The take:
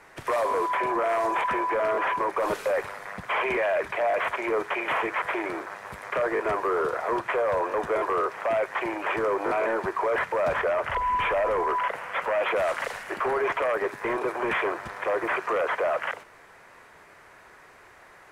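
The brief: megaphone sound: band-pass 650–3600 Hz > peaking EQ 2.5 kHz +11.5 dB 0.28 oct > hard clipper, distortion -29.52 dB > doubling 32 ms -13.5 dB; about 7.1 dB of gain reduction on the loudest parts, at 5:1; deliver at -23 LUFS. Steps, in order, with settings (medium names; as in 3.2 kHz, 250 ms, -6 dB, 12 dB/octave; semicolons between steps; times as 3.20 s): compression 5:1, threshold -30 dBFS; band-pass 650–3600 Hz; peaking EQ 2.5 kHz +11.5 dB 0.28 oct; hard clipper -22.5 dBFS; doubling 32 ms -13.5 dB; trim +9.5 dB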